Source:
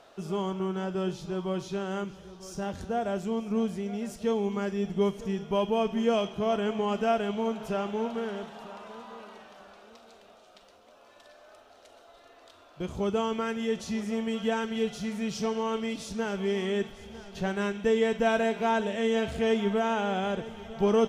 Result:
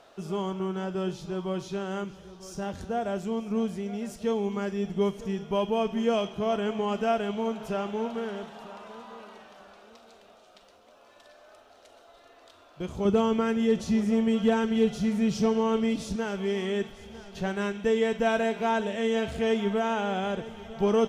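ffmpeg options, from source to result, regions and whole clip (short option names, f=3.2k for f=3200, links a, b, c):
-filter_complex "[0:a]asettb=1/sr,asplit=3[a][b][c];[a]atrim=end=13.054[d];[b]atrim=start=13.05:end=16.16,asetpts=PTS-STARTPTS,afade=t=in:d=0.004:c=qsin,afade=t=out:st=3.106:d=0.004:c=qsin,lowshelf=f=500:g=8.5,asoftclip=type=hard:threshold=-14dB[e];[c]atrim=start=16.156[f];[d][e]acrossfade=d=0.004:c1=hsin:c2=qsin[g];[g][f]acrossfade=d=0.004:c1=qsin:c2=hsin"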